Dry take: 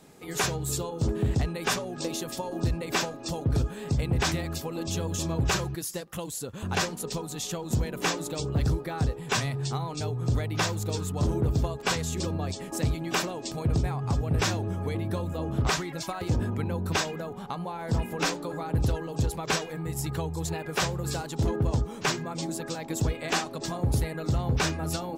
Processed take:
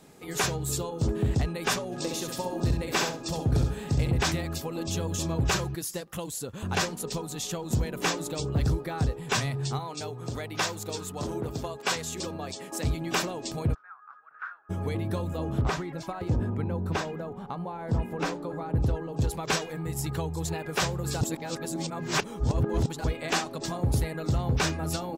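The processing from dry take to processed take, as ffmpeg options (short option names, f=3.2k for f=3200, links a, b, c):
-filter_complex "[0:a]asplit=3[a][b][c];[a]afade=t=out:st=1.91:d=0.02[d];[b]aecho=1:1:66|132|198:0.531|0.117|0.0257,afade=t=in:st=1.91:d=0.02,afade=t=out:st=4.1:d=0.02[e];[c]afade=t=in:st=4.1:d=0.02[f];[d][e][f]amix=inputs=3:normalize=0,asettb=1/sr,asplit=3[g][h][i];[g]atrim=end=9.794[j];[h]atrim=start=9.79:end=12.85,asetpts=PTS-STARTPTS,afade=t=in:d=0.004:c=qsin,afade=t=out:st=3.056:d=0.004:c=qsin,highpass=f=360:p=1[k];[i]atrim=start=12.846[l];[j][k]acrossfade=d=0.004:c1=hsin:c2=qsin[m];[m][l]acrossfade=d=0.004:c1=qsin:c2=hsin,asplit=3[n][o][p];[n]afade=t=out:st=13.73:d=0.02[q];[o]asuperpass=centerf=1400:order=4:qfactor=3.9,afade=t=in:st=13.73:d=0.02,afade=t=out:st=14.69:d=0.02[r];[p]afade=t=in:st=14.69:d=0.02[s];[q][r][s]amix=inputs=3:normalize=0,asettb=1/sr,asplit=3[t][u][v];[t]atrim=end=15.614[w];[u]atrim=start=15.61:end=19.22,asetpts=PTS-STARTPTS,afade=t=in:d=0.004:c=qsin,afade=t=out:st=3.606:d=0.004:c=qsin,highshelf=f=2.3k:g=-12[x];[v]atrim=start=19.216[y];[w][x]acrossfade=d=0.004:c1=hsin:c2=qsin[z];[z][y]acrossfade=d=0.004:c1=qsin:c2=hsin,asplit=3[aa][ab][ac];[aa]atrim=end=21.212[ad];[ab]atrim=start=21.208:end=23.042,asetpts=PTS-STARTPTS,areverse[ae];[ac]atrim=start=23.038[af];[ad][ae]acrossfade=d=0.004:c1=hsin:c2=hsin[ag];[ag][af]acrossfade=d=0.004:c1=hsin:c2=hsin"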